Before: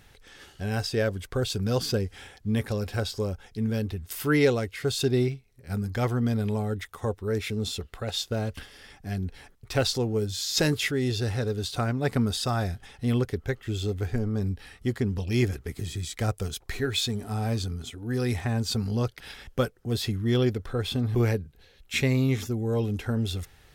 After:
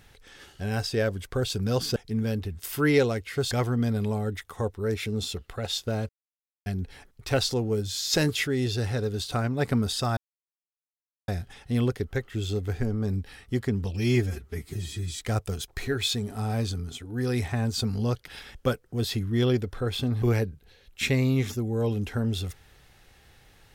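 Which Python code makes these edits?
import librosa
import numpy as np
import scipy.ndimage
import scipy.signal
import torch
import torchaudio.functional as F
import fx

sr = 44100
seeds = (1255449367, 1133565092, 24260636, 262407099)

y = fx.edit(x, sr, fx.cut(start_s=1.96, length_s=1.47),
    fx.cut(start_s=4.98, length_s=0.97),
    fx.silence(start_s=8.53, length_s=0.57),
    fx.insert_silence(at_s=12.61, length_s=1.11),
    fx.stretch_span(start_s=15.27, length_s=0.81, factor=1.5), tone=tone)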